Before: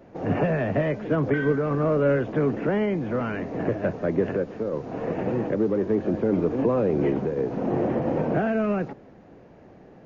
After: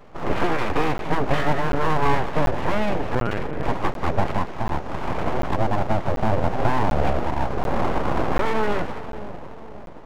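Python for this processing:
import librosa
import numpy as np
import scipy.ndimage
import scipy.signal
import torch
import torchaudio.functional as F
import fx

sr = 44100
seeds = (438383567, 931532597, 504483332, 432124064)

y = fx.echo_split(x, sr, split_hz=590.0, low_ms=534, high_ms=189, feedback_pct=52, wet_db=-11.0)
y = fx.lpc_vocoder(y, sr, seeds[0], excitation='pitch_kept', order=10, at=(3.15, 3.63))
y = np.abs(y)
y = fx.buffer_crackle(y, sr, first_s=0.98, period_s=0.74, block=512, kind='zero')
y = y * 10.0 ** (4.5 / 20.0)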